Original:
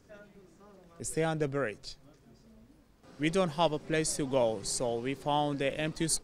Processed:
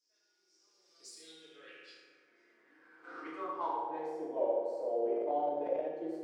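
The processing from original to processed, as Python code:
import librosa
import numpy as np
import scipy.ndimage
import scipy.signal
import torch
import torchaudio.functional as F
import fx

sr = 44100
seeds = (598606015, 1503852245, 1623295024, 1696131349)

y = fx.self_delay(x, sr, depth_ms=0.075)
y = fx.recorder_agc(y, sr, target_db=-22.0, rise_db_per_s=14.0, max_gain_db=30)
y = fx.peak_eq(y, sr, hz=900.0, db=-12.0, octaves=1.8, at=(1.03, 1.45))
y = scipy.signal.sosfilt(scipy.signal.butter(2, 250.0, 'highpass', fs=sr, output='sos'), y)
y = fx.peak_eq(y, sr, hz=380.0, db=12.0, octaves=0.57)
y = y + 10.0 ** (-7.5 / 20.0) * np.pad(y, (int(77 * sr / 1000.0), 0))[:len(y)]
y = fx.rev_fdn(y, sr, rt60_s=1.6, lf_ratio=1.2, hf_ratio=0.55, size_ms=19.0, drr_db=-9.5)
y = fx.transient(y, sr, attack_db=5, sustain_db=9, at=(5.06, 5.88))
y = fx.filter_sweep_bandpass(y, sr, from_hz=5300.0, to_hz=640.0, start_s=0.84, end_s=4.46, q=5.9)
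y = y * 10.0 ** (-8.5 / 20.0)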